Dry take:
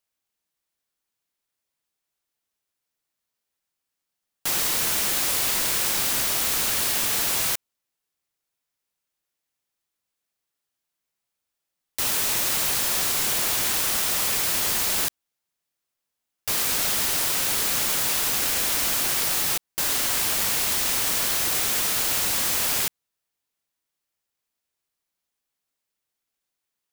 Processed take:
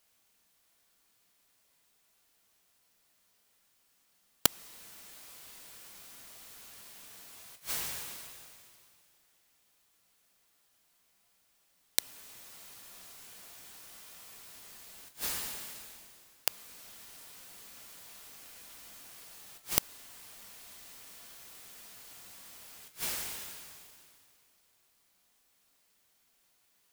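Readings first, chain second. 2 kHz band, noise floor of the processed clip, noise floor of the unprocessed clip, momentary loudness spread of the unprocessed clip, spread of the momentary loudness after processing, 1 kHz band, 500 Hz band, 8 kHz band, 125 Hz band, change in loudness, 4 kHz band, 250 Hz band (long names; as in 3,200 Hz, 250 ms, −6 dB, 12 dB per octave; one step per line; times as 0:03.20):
−19.0 dB, −71 dBFS, −84 dBFS, 3 LU, 15 LU, −18.0 dB, −16.0 dB, −18.0 dB, −16.0 dB, −19.0 dB, −17.0 dB, −16.0 dB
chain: coupled-rooms reverb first 0.4 s, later 2.3 s, from −20 dB, DRR 3.5 dB
gate with flip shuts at −15 dBFS, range −40 dB
level +10.5 dB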